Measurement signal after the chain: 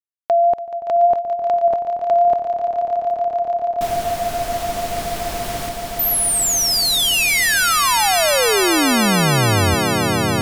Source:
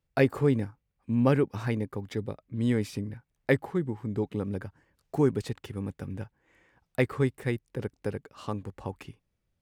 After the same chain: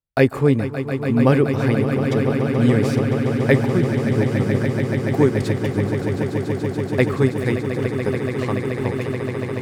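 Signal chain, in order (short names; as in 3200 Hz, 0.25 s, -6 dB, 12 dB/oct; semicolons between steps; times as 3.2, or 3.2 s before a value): gate -48 dBFS, range -20 dB; wow and flutter 20 cents; swelling echo 0.143 s, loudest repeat 8, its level -11 dB; gain +7.5 dB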